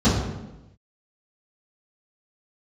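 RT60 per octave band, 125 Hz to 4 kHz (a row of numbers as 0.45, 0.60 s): 1.1, 1.1, 1.0, 0.95, 0.85, 0.70 s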